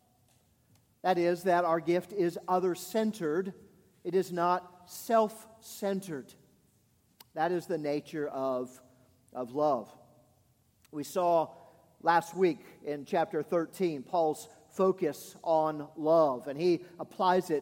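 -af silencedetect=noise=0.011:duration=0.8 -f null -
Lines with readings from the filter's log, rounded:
silence_start: 0.00
silence_end: 1.04 | silence_duration: 1.04
silence_start: 6.21
silence_end: 7.21 | silence_duration: 1.00
silence_start: 9.83
silence_end: 10.93 | silence_duration: 1.10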